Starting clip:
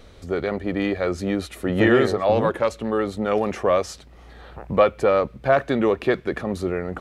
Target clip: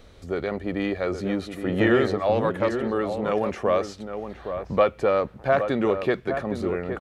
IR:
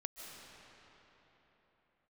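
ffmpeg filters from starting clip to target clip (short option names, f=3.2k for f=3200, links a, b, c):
-filter_complex "[0:a]acrossover=split=5800[a][b];[b]acompressor=threshold=-50dB:ratio=4:attack=1:release=60[c];[a][c]amix=inputs=2:normalize=0,asplit=2[d][e];[e]adelay=816.3,volume=-8dB,highshelf=f=4k:g=-18.4[f];[d][f]amix=inputs=2:normalize=0,volume=-3dB"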